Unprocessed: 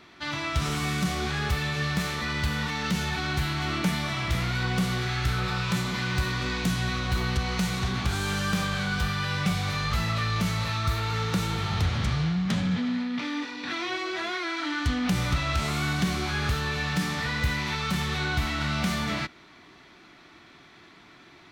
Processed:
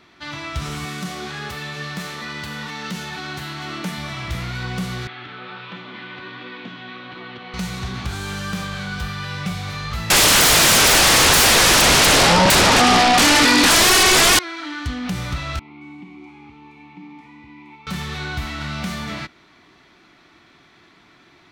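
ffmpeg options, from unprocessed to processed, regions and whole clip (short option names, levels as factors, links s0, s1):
-filter_complex "[0:a]asettb=1/sr,asplit=3[s0][s1][s2];[s0]atrim=end=0.854[s3];[s1]atrim=start=0.85:end=3.98,asetpts=PTS-STARTPTS,afade=t=in:d=0.004:c=qsin,afade=t=out:st=3.126:d=0.004:c=qsin,highpass=170,bandreject=f=2300:w=23[s4];[s2]atrim=start=3.976[s5];[s3][s4]acrossfade=d=0.004:c1=hsin:c2=qsin[s6];[s6][s5]acrossfade=d=0.004:c1=qsin:c2=hsin,asettb=1/sr,asplit=3[s7][s8][s9];[s7]atrim=end=5.074[s10];[s8]atrim=start=5.07:end=7.54,asetpts=PTS-STARTPTS,afade=t=in:d=0.004:c=qsin,afade=t=out:st=2.466:d=0.004:c=qsin,highpass=f=170:w=0.5412,highpass=f=170:w=1.3066,equalizer=f=170:t=q:w=4:g=-9,equalizer=f=300:t=q:w=4:g=4,equalizer=f=3300:t=q:w=4:g=4,lowpass=f=3400:w=0.5412,lowpass=f=3400:w=1.3066,flanger=delay=5.8:depth=6.2:regen=66:speed=1.4:shape=sinusoidal[s11];[s9]atrim=start=7.536[s12];[s10][s11]acrossfade=d=0.004:c1=hsin:c2=qsin[s13];[s13][s12]acrossfade=d=0.004:c1=qsin:c2=hsin,asettb=1/sr,asplit=3[s14][s15][s16];[s14]atrim=end=10.104[s17];[s15]atrim=start=10.1:end=14.39,asetpts=PTS-STARTPTS,afade=t=in:d=0.004:c=qsin,afade=t=out:st=4.286:d=0.004:c=qsin,equalizer=f=4800:w=7.7:g=9,aeval=exprs='0.178*sin(PI/2*8.91*val(0)/0.178)':c=same,acontrast=32[s18];[s16]atrim=start=14.386[s19];[s17][s18]acrossfade=d=0.004:c1=hsin:c2=qsin[s20];[s20][s19]acrossfade=d=0.004:c1=qsin:c2=hsin,asettb=1/sr,asplit=3[s21][s22][s23];[s21]atrim=end=15.594[s24];[s22]atrim=start=15.59:end=17.87,asetpts=PTS-STARTPTS,afade=t=in:d=0.004:c=qsin,afade=t=out:st=2.276:d=0.004:c=qsin,asplit=3[s25][s26][s27];[s25]bandpass=f=300:t=q:w=8,volume=1[s28];[s26]bandpass=f=870:t=q:w=8,volume=0.501[s29];[s27]bandpass=f=2240:t=q:w=8,volume=0.355[s30];[s28][s29][s30]amix=inputs=3:normalize=0,acrossover=split=4400[s31][s32];[s32]adelay=220[s33];[s31][s33]amix=inputs=2:normalize=0,atrim=end_sample=100548[s34];[s23]atrim=start=17.866[s35];[s24][s34]acrossfade=d=0.004:c1=hsin:c2=qsin[s36];[s36][s35]acrossfade=d=0.004:c1=qsin:c2=hsin"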